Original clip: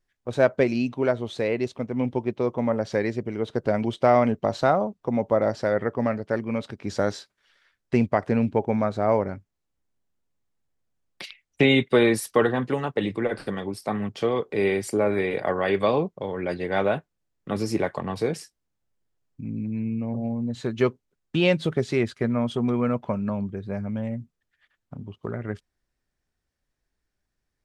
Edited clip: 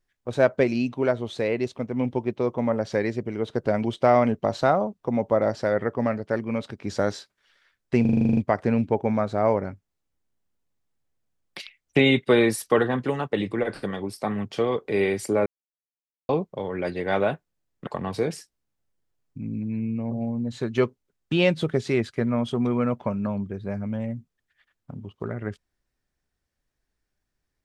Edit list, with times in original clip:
8.01 s: stutter 0.04 s, 10 plays
15.10–15.93 s: mute
17.51–17.90 s: delete

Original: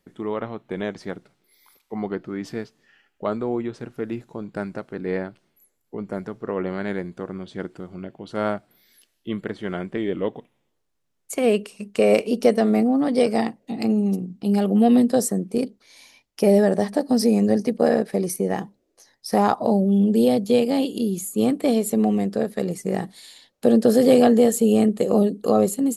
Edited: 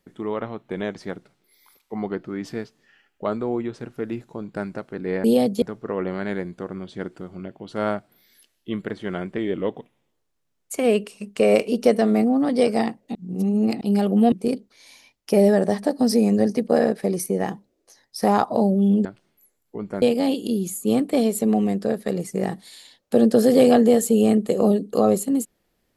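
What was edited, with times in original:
5.24–6.21 s: swap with 20.15–20.53 s
13.74–14.40 s: reverse
14.91–15.42 s: delete

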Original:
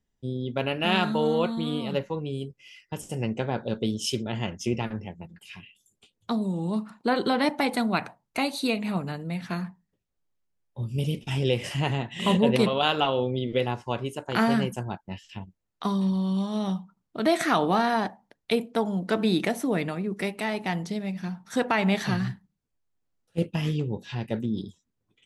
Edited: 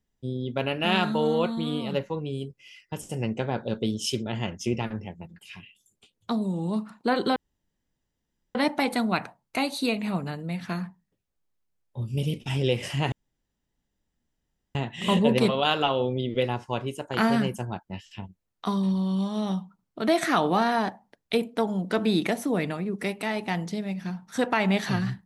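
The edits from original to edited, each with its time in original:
7.36 s: insert room tone 1.19 s
11.93 s: insert room tone 1.63 s

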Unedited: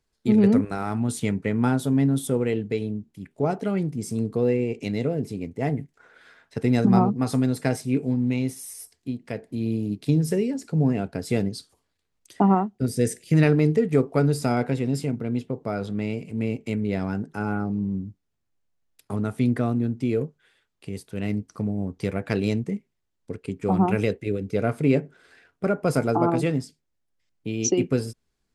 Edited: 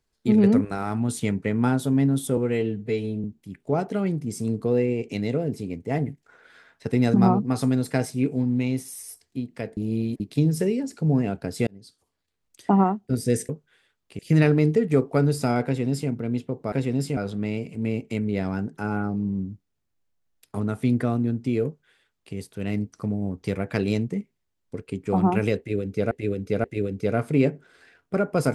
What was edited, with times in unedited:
2.37–2.95 s: stretch 1.5×
9.48–9.91 s: reverse
11.38–12.60 s: fade in equal-power
14.66–15.11 s: copy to 15.73 s
20.21–20.91 s: copy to 13.20 s
24.14–24.67 s: loop, 3 plays

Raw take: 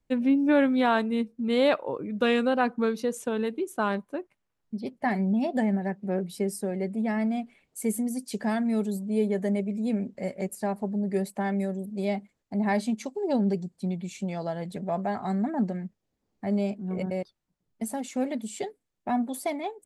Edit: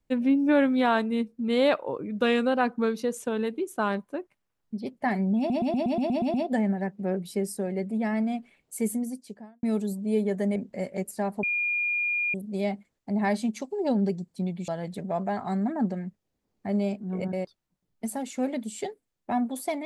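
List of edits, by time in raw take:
5.38 s: stutter 0.12 s, 9 plays
7.89–8.67 s: studio fade out
9.60–10.00 s: delete
10.87–11.78 s: bleep 2.42 kHz -24 dBFS
14.12–14.46 s: delete

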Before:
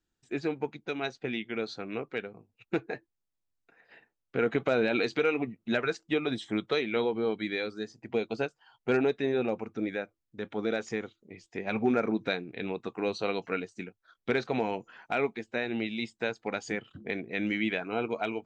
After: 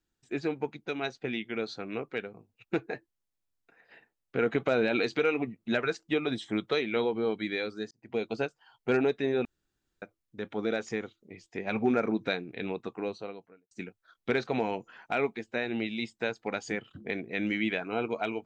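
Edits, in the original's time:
7.91–8.24 s: fade in
9.45–10.02 s: room tone
12.67–13.71 s: studio fade out

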